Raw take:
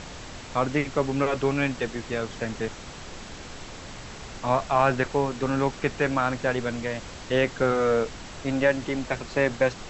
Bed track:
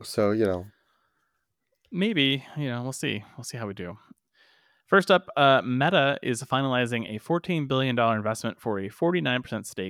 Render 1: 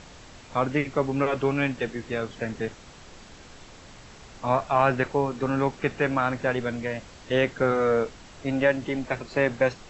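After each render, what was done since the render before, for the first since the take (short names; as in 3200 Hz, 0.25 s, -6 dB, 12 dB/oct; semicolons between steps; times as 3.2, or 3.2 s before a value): noise print and reduce 7 dB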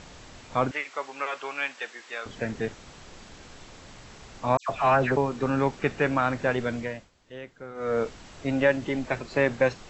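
0.71–2.26 HPF 930 Hz; 4.57–5.17 dispersion lows, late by 0.123 s, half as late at 2100 Hz; 6.78–8.06 dip -18 dB, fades 0.32 s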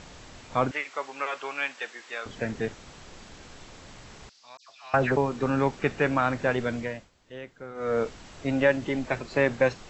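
4.29–4.94 band-pass 4800 Hz, Q 3.2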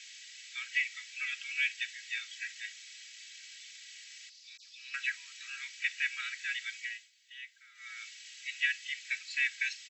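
steep high-pass 1900 Hz 48 dB/oct; comb 3.1 ms, depth 94%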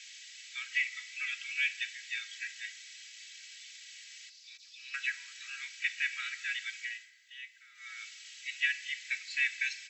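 FDN reverb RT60 1.6 s, high-frequency decay 0.55×, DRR 12.5 dB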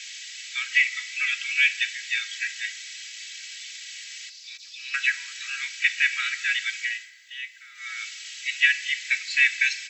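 gain +11 dB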